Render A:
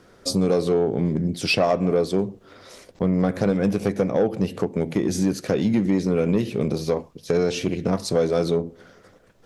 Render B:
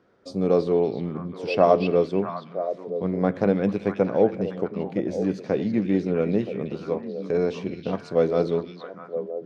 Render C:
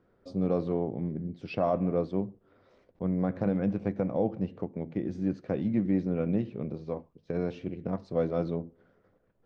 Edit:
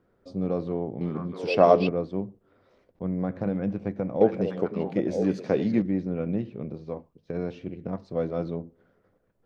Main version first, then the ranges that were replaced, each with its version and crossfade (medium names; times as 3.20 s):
C
1.01–1.89 s: from B
4.21–5.82 s: from B
not used: A